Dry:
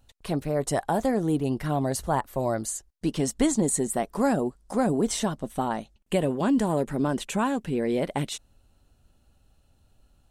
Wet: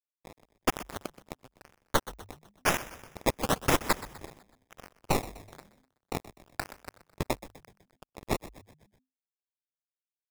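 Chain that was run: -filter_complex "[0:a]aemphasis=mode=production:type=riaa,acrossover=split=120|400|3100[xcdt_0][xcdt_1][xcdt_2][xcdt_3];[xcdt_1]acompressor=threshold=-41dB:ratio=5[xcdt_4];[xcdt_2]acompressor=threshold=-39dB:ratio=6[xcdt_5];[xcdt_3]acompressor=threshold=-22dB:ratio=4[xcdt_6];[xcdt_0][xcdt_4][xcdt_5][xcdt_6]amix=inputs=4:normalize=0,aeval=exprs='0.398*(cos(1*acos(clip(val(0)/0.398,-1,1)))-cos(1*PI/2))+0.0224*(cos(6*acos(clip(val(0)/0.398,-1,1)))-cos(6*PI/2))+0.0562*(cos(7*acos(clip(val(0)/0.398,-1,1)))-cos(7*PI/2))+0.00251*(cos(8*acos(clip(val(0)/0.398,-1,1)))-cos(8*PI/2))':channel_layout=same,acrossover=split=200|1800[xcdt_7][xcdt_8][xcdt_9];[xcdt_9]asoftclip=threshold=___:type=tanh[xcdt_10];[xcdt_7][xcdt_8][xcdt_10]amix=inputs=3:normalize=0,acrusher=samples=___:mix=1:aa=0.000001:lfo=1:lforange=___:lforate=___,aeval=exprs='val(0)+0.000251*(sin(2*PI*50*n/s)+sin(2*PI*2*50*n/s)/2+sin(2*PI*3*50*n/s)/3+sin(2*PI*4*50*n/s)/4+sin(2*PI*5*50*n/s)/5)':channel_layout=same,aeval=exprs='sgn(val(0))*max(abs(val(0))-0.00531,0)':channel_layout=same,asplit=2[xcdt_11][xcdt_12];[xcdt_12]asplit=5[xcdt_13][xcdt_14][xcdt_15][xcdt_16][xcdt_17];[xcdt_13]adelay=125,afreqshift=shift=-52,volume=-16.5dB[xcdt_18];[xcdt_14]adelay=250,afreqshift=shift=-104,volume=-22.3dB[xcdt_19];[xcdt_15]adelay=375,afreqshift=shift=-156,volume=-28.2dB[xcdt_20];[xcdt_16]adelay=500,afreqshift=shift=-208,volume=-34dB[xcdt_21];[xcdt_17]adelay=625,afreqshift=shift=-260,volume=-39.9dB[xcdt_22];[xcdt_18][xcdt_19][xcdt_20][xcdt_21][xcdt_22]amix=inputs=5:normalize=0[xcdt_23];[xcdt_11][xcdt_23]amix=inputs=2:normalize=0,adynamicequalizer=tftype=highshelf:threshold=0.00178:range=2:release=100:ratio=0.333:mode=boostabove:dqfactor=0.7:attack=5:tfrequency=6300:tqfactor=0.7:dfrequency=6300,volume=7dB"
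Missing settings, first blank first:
-22.5dB, 20, 20, 1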